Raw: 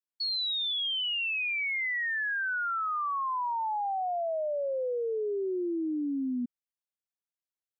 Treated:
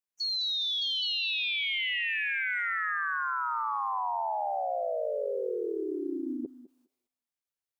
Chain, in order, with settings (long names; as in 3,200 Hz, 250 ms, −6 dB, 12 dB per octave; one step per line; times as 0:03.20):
feedback echo with a high-pass in the loop 205 ms, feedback 23%, high-pass 460 Hz, level −11 dB
formants moved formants +6 semitones